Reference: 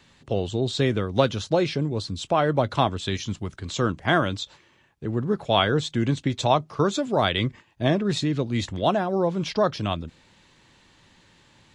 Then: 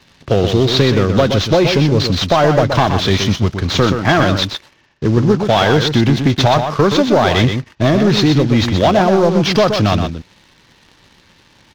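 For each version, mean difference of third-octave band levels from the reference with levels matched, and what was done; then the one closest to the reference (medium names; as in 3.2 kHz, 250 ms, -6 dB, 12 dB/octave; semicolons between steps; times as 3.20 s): 8.0 dB: CVSD coder 32 kbps; compression, threshold -22 dBFS, peak gain reduction 7.5 dB; waveshaping leveller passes 2; on a send: delay 124 ms -7 dB; on the sum: trim +8.5 dB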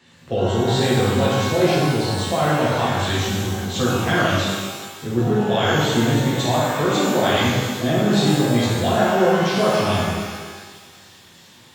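13.0 dB: feedback echo behind a high-pass 400 ms, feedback 81%, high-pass 4.1 kHz, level -16 dB; peak limiter -13.5 dBFS, peak gain reduction 9.5 dB; high-pass 81 Hz; pitch-shifted reverb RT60 1.5 s, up +12 st, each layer -8 dB, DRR -7.5 dB; trim -1.5 dB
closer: first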